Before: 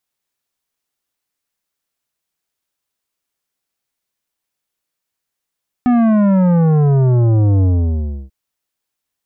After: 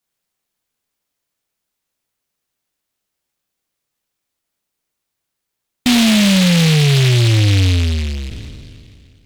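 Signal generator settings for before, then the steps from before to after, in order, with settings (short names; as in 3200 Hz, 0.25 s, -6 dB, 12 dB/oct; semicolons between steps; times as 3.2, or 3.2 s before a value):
sub drop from 250 Hz, over 2.44 s, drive 11.5 dB, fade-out 0.67 s, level -10.5 dB
spectral trails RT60 2.37 s; noise-modulated delay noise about 3000 Hz, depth 0.28 ms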